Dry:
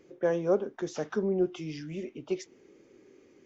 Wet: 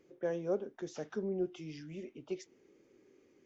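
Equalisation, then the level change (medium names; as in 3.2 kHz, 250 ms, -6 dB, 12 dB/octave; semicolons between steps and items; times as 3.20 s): dynamic bell 1.1 kHz, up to -5 dB, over -49 dBFS, Q 1.9; -7.5 dB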